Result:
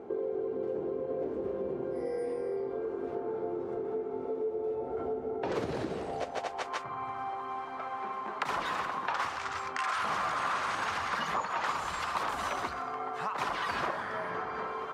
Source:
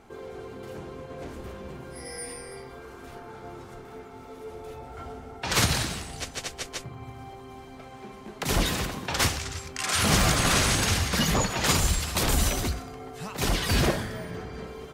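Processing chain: in parallel at +1 dB: limiter -18 dBFS, peak gain reduction 9.5 dB; on the sum: band-pass sweep 420 Hz -> 1100 Hz, 5.87–6.82; compressor 4:1, threshold -40 dBFS, peak gain reduction 14.5 dB; gain +8.5 dB

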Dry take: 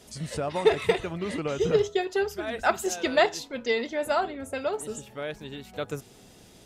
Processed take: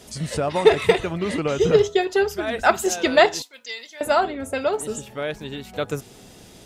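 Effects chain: 3.42–4.01 differentiator; gain +6.5 dB

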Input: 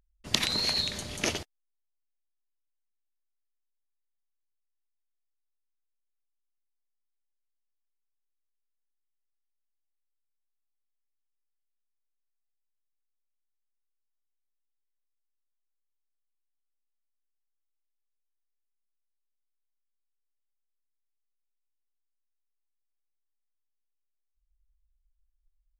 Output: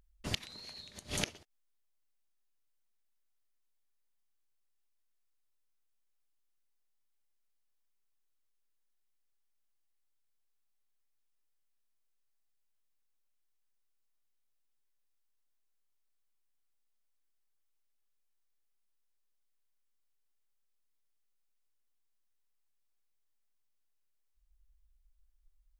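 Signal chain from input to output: flipped gate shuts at -22 dBFS, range -25 dB; gain +4 dB

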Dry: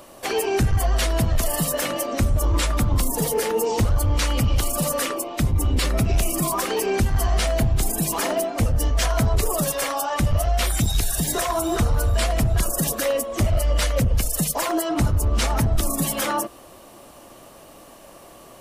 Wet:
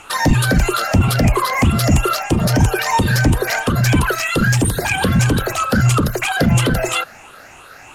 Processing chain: moving spectral ripple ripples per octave 0.65, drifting +1.3 Hz, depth 10 dB; steep low-pass 5400 Hz 48 dB/oct; speed mistake 33 rpm record played at 78 rpm; gain +4.5 dB

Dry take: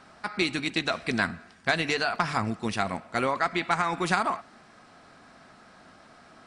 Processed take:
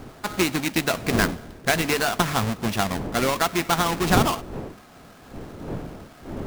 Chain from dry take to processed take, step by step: half-waves squared off; wind noise 370 Hz -33 dBFS

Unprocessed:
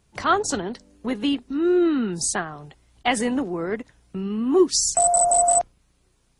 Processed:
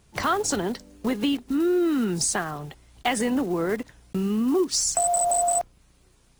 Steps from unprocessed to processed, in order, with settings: block floating point 5-bit; in parallel at -2.5 dB: limiter -18 dBFS, peak gain reduction 10.5 dB; on the sum: compressor 2.5:1, threshold -23 dBFS, peak gain reduction 9.5 dB

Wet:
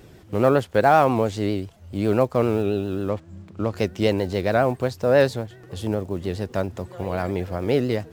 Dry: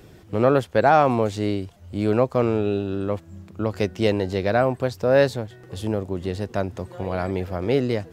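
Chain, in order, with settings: block floating point 7-bit; vibrato 7.4 Hz 64 cents; 3.09–3.73 decimation joined by straight lines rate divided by 3×

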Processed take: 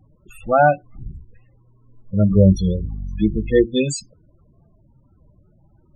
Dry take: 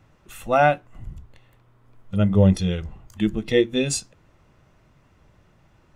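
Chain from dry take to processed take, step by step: 2.3–3.64 buzz 50 Hz, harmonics 5, -31 dBFS -8 dB/oct; loudest bins only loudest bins 16; record warp 33 1/3 rpm, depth 160 cents; gain +3.5 dB

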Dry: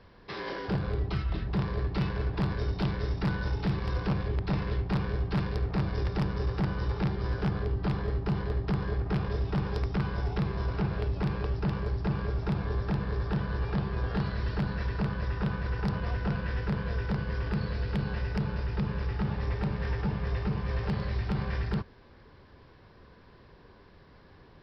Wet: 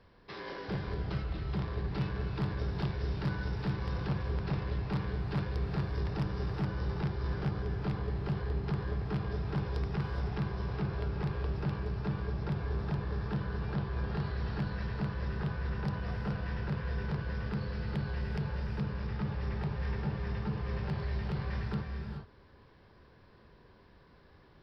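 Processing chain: non-linear reverb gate 0.45 s rising, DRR 3.5 dB; gain -6 dB

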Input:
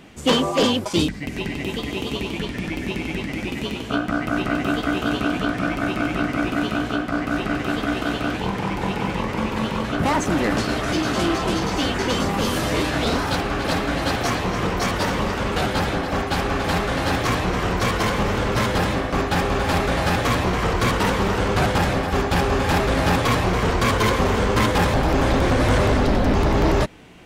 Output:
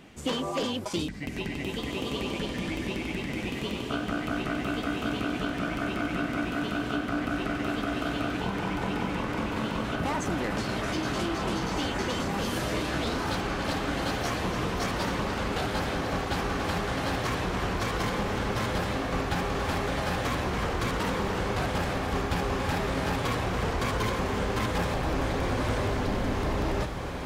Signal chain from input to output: compressor, threshold -21 dBFS, peak gain reduction 7.5 dB; on a send: diffused feedback echo 1.841 s, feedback 57%, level -7 dB; on the sum: gain -5.5 dB

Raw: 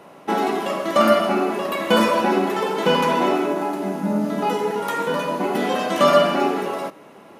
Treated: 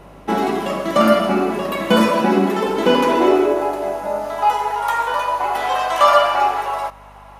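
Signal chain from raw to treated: high-pass sweep 140 Hz -> 850 Hz, 2.06–4.47; hum 50 Hz, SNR 29 dB; 2.02–2.66 notches 50/100 Hz; gain +1 dB

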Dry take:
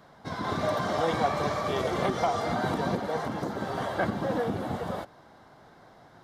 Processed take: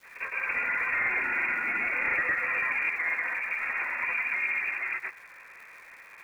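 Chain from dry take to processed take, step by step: in parallel at +0.5 dB: compressor, threshold -39 dBFS, peak gain reduction 17 dB; on the sum: grains 0.136 s, grains 16/s, pitch spread up and down by 0 st; overloaded stage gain 23 dB; inverted band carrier 2600 Hz; crackle 480/s -47 dBFS

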